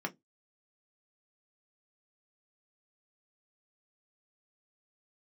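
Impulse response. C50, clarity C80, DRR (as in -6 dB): 24.5 dB, 34.0 dB, 3.0 dB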